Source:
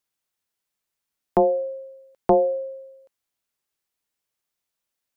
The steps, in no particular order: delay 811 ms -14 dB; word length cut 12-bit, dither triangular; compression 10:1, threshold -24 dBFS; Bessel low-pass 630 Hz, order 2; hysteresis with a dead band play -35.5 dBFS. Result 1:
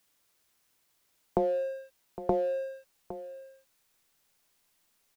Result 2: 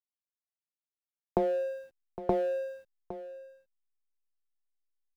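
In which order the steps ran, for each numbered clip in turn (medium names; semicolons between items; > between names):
Bessel low-pass > hysteresis with a dead band > compression > delay > word length cut; Bessel low-pass > compression > word length cut > hysteresis with a dead band > delay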